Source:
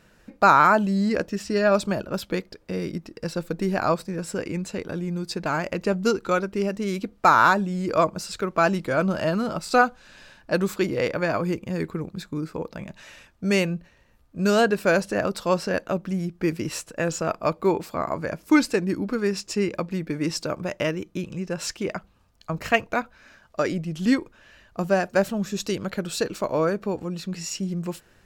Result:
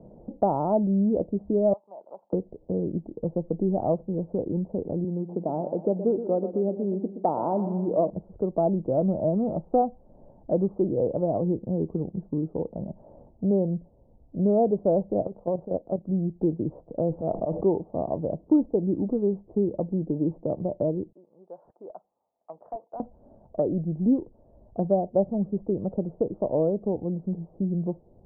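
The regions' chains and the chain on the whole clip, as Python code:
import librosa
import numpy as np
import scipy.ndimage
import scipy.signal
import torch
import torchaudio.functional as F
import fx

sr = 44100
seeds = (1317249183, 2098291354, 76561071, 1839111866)

y = fx.chain(x, sr, fx.ladder_bandpass(hz=1100.0, resonance_pct=55),
    fx.band_squash(depth_pct=70), at=(1.73, 2.33))
y = fx.chain(y, sr, fx.median_filter(points=15),
    fx.highpass(hz=200.0, slope=12),
    fx.echo_feedback(ms=121, feedback_pct=51, wet_db=-12), at=(5.04, 8.1))
y = fx.chain(y, sr, fx.low_shelf(hz=370.0, db=-2.0),
    fx.level_steps(step_db=12), at=(15.22, 16.09))
y = fx.chain(y, sr, fx.auto_swell(attack_ms=107.0),
    fx.env_flatten(amount_pct=70), at=(17.08, 17.63))
y = fx.chain(y, sr, fx.highpass(hz=1500.0, slope=12),
    fx.clip_hard(threshold_db=-22.0), at=(21.12, 23.0))
y = scipy.signal.sosfilt(scipy.signal.butter(8, 790.0, 'lowpass', fs=sr, output='sos'), y)
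y = fx.band_squash(y, sr, depth_pct=40)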